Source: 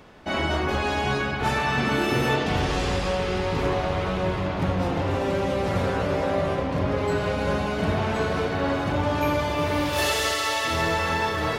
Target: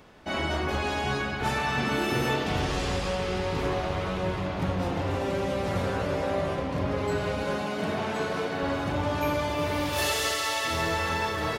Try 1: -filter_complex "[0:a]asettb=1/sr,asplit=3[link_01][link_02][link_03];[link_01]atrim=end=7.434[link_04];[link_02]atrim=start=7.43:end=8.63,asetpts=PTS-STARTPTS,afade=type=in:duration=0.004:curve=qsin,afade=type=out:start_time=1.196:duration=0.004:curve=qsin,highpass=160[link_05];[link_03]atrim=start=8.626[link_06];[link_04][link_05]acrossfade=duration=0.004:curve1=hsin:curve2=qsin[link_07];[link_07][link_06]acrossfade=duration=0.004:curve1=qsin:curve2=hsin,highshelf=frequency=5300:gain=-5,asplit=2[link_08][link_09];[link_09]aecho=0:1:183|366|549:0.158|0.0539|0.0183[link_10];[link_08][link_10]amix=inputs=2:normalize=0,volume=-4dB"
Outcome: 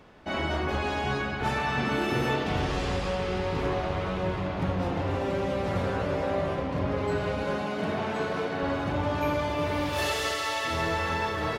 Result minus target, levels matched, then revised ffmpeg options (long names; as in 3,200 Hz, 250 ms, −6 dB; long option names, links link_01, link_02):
8,000 Hz band −5.5 dB
-filter_complex "[0:a]asettb=1/sr,asplit=3[link_01][link_02][link_03];[link_01]atrim=end=7.434[link_04];[link_02]atrim=start=7.43:end=8.63,asetpts=PTS-STARTPTS,afade=type=in:duration=0.004:curve=qsin,afade=type=out:start_time=1.196:duration=0.004:curve=qsin,highpass=160[link_05];[link_03]atrim=start=8.626[link_06];[link_04][link_05]acrossfade=duration=0.004:curve1=hsin:curve2=qsin[link_07];[link_07][link_06]acrossfade=duration=0.004:curve1=qsin:curve2=hsin,highshelf=frequency=5300:gain=4,asplit=2[link_08][link_09];[link_09]aecho=0:1:183|366|549:0.158|0.0539|0.0183[link_10];[link_08][link_10]amix=inputs=2:normalize=0,volume=-4dB"